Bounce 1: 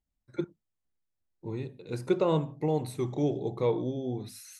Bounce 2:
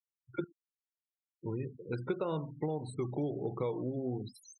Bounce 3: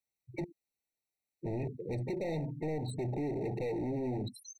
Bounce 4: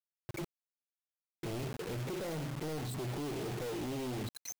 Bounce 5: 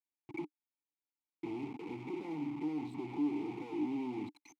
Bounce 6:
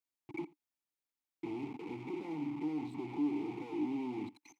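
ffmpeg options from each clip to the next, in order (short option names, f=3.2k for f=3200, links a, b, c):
-af "equalizer=f=1.4k:w=2.7:g=6,afftfilt=real='re*gte(hypot(re,im),0.0112)':imag='im*gte(hypot(re,im),0.0112)':win_size=1024:overlap=0.75,acompressor=threshold=-31dB:ratio=6"
-af "asoftclip=type=hard:threshold=-39dB,afftfilt=real='re*eq(mod(floor(b*sr/1024/910),2),0)':imag='im*eq(mod(floor(b*sr/1024/910),2),0)':win_size=1024:overlap=0.75,volume=6.5dB"
-af "alimiter=level_in=14.5dB:limit=-24dB:level=0:latency=1:release=144,volume=-14.5dB,acrusher=bits=7:mix=0:aa=0.000001,volume=5.5dB"
-filter_complex "[0:a]asplit=3[a][b][c];[a]bandpass=f=300:t=q:w=8,volume=0dB[d];[b]bandpass=f=870:t=q:w=8,volume=-6dB[e];[c]bandpass=f=2.24k:t=q:w=8,volume=-9dB[f];[d][e][f]amix=inputs=3:normalize=0,volume=10dB"
-af "aecho=1:1:83:0.0708"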